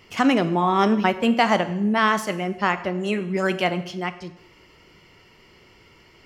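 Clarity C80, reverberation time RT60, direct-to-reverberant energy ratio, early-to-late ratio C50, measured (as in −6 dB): 16.0 dB, 0.80 s, 11.0 dB, 14.0 dB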